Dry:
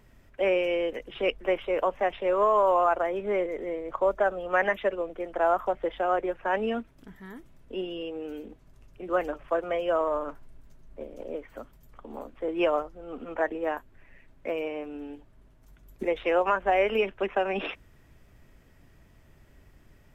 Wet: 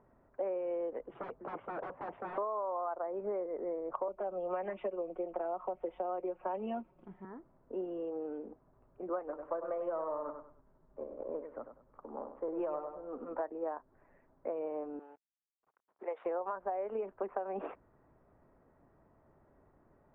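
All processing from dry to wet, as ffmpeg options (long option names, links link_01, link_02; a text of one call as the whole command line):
ffmpeg -i in.wav -filter_complex "[0:a]asettb=1/sr,asplit=3[link_01][link_02][link_03];[link_01]atrim=end=1.134[link_04];[link_02]atrim=start=1.13:end=2.38,asetpts=PTS-STARTPTS,afade=type=in:duration=0.004:curve=qsin,afade=type=out:start_time=1.246:duration=0.004:curve=qsin,highpass=100,lowshelf=frequency=180:gain=9,aeval=exprs='0.0299*(abs(mod(val(0)/0.0299+3,4)-2)-1)':channel_layout=same[link_05];[link_03]atrim=start=2.376[link_06];[link_04][link_05]acrossfade=duration=0.004:curve1=hsin:curve2=qsin[link_07];[link_07][link_06]acrossfade=duration=0.004:curve1=qsin:curve2=hsin,asettb=1/sr,asplit=3[link_08][link_09][link_10];[link_08]atrim=end=4.084[link_11];[link_09]atrim=start=4.08:end=7.25,asetpts=PTS-STARTPTS,afade=type=in:duration=0.004:curve=qsin,afade=type=out:start_time=3.166:duration=0.004:curve=qsin,highshelf=frequency=2100:width_type=q:width=3:gain=6.5,aecho=1:1:5.5:0.74,atrim=end_sample=139797,acrossover=split=340|3000[link_12][link_13][link_14];[link_13]acompressor=threshold=-29dB:ratio=2:attack=3.2:release=140:knee=2.83:detection=peak[link_15];[link_12][link_15][link_14]amix=inputs=3:normalize=0[link_16];[link_10]atrim=start=7.246[link_17];[link_11][link_16]acrossfade=duration=0.004:curve1=hsin:curve2=qsin[link_18];[link_18][link_17]acrossfade=duration=0.004:curve1=qsin:curve2=hsin,asettb=1/sr,asplit=3[link_19][link_20][link_21];[link_19]atrim=end=9.194[link_22];[link_20]atrim=start=9.19:end=13.4,asetpts=PTS-STARTPTS,afade=type=in:duration=0.004:curve=qsin,afade=type=out:start_time=4.206:duration=0.004:curve=qsin,aeval=exprs='if(lt(val(0),0),0.708*val(0),val(0))':channel_layout=same,bandreject=frequency=710:width=14,aecho=1:1:98|196|294:0.335|0.0938|0.0263,atrim=end_sample=185661[link_23];[link_21]atrim=start=13.396[link_24];[link_22][link_23]acrossfade=duration=0.004:curve1=hsin:curve2=qsin[link_25];[link_25][link_24]acrossfade=duration=0.004:curve1=qsin:curve2=hsin,asettb=1/sr,asplit=3[link_26][link_27][link_28];[link_26]atrim=end=14.994[link_29];[link_27]atrim=start=14.99:end=16.26,asetpts=PTS-STARTPTS,afade=type=in:duration=0.004:curve=qsin,afade=type=out:start_time=1.266:duration=0.004:curve=qsin,highpass=720,aemphasis=mode=production:type=75kf,aeval=exprs='val(0)*gte(abs(val(0)),0.00224)':channel_layout=same[link_30];[link_28]atrim=start=16.256[link_31];[link_29][link_30]acrossfade=duration=0.004:curve1=hsin:curve2=qsin[link_32];[link_32][link_31]acrossfade=duration=0.004:curve1=qsin:curve2=hsin,lowpass=frequency=1100:width=0.5412,lowpass=frequency=1100:width=1.3066,aemphasis=mode=production:type=riaa,acompressor=threshold=-34dB:ratio=10,volume=1dB" out.wav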